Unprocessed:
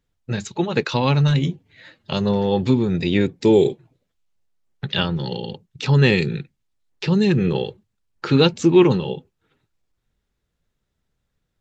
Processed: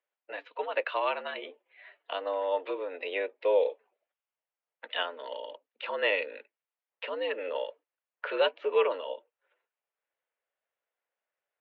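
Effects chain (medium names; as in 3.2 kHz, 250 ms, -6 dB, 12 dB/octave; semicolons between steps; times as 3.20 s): mistuned SSB +87 Hz 420–2900 Hz; trim -6 dB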